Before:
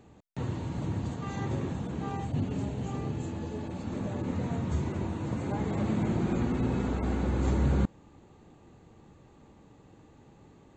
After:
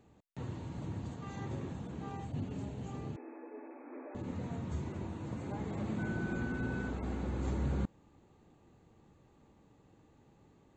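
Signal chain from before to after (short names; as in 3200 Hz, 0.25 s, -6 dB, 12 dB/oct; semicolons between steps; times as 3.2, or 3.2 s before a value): 3.16–4.15 brick-wall FIR band-pass 250–2600 Hz; 5.98–6.89 whine 1500 Hz -36 dBFS; gain -8 dB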